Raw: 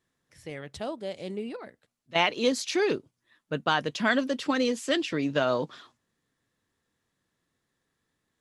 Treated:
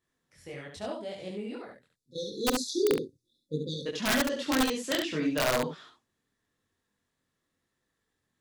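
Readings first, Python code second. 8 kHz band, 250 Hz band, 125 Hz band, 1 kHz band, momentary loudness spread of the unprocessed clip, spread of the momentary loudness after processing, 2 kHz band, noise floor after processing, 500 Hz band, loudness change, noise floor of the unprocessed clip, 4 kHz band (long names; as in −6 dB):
+3.5 dB, −1.5 dB, −1.0 dB, −5.0 dB, 13 LU, 16 LU, −4.5 dB, −82 dBFS, −2.5 dB, −2.0 dB, −80 dBFS, −2.0 dB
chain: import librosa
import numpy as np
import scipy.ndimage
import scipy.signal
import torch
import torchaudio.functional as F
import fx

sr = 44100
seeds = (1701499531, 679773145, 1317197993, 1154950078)

p1 = fx.chorus_voices(x, sr, voices=2, hz=0.83, base_ms=22, depth_ms=2.7, mix_pct=50)
p2 = fx.spec_erase(p1, sr, start_s=1.9, length_s=1.96, low_hz=540.0, high_hz=3400.0)
p3 = (np.mod(10.0 ** (19.0 / 20.0) * p2 + 1.0, 2.0) - 1.0) / 10.0 ** (19.0 / 20.0)
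y = p3 + fx.room_early_taps(p3, sr, ms=(45, 69), db=(-17.0, -5.0), dry=0)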